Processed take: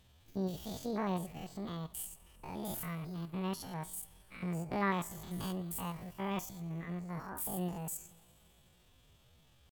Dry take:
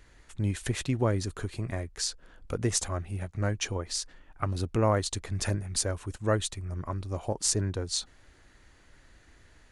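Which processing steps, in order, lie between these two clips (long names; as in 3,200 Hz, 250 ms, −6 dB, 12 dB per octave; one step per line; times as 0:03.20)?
spectrum averaged block by block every 100 ms
coupled-rooms reverb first 0.27 s, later 3.1 s, from −20 dB, DRR 10.5 dB
pitch shifter +10.5 semitones
level −7 dB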